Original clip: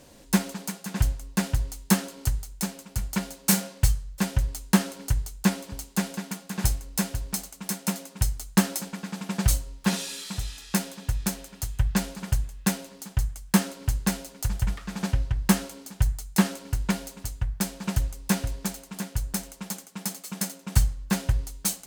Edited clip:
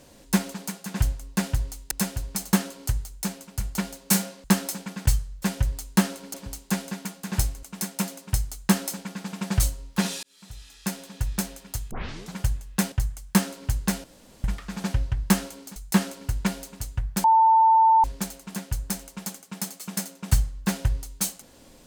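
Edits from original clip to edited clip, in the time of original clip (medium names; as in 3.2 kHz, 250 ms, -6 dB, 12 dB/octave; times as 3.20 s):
5.10–5.60 s: delete
6.89–7.51 s: move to 1.91 s
8.51–9.13 s: copy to 3.82 s
10.11–11.16 s: fade in
11.79 s: tape start 0.43 s
12.80–13.11 s: delete
14.23–14.63 s: room tone
15.95–16.20 s: delete
17.68–18.48 s: bleep 893 Hz -13.5 dBFS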